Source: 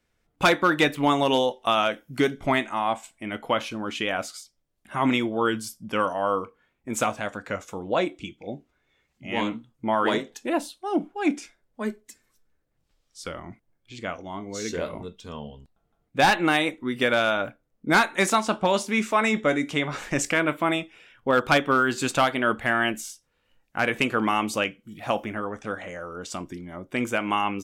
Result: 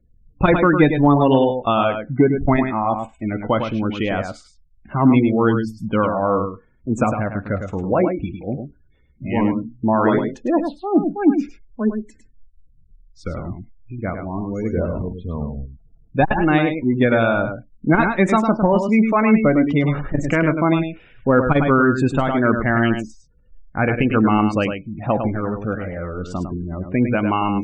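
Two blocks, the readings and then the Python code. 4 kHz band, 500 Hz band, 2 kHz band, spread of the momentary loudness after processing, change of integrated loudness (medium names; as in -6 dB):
-6.5 dB, +6.5 dB, +0.5 dB, 13 LU, +6.0 dB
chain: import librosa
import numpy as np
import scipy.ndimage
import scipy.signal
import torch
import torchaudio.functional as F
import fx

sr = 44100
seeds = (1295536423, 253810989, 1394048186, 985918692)

y = fx.riaa(x, sr, side='playback')
y = fx.spec_gate(y, sr, threshold_db=-25, keep='strong')
y = y + 10.0 ** (-7.0 / 20.0) * np.pad(y, (int(104 * sr / 1000.0), 0))[:len(y)]
y = fx.transformer_sat(y, sr, knee_hz=150.0)
y = y * 10.0 ** (3.5 / 20.0)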